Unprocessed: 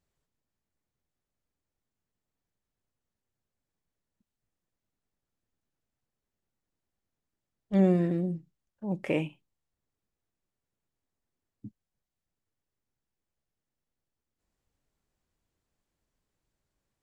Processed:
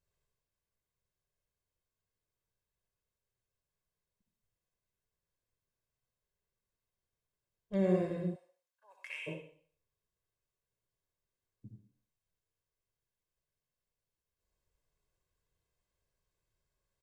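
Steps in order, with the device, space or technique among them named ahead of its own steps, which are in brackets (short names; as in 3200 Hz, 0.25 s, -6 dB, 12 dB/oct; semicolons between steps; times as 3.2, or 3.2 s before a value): microphone above a desk (comb 1.9 ms, depth 61%; reverb RT60 0.50 s, pre-delay 56 ms, DRR 0.5 dB); 8.34–9.26 HPF 610 Hz -> 1500 Hz 24 dB/oct; gain -7 dB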